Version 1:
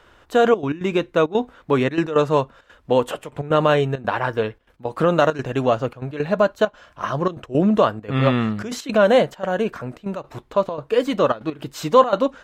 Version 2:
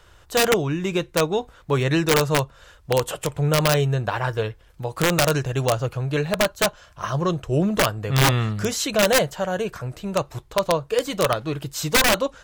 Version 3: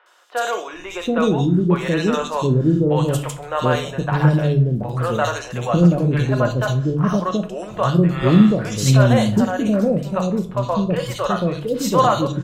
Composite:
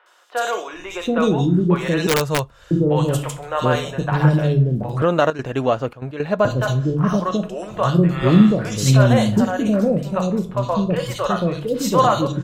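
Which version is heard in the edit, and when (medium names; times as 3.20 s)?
3
2.07–2.71 s: from 2
5.02–6.45 s: from 1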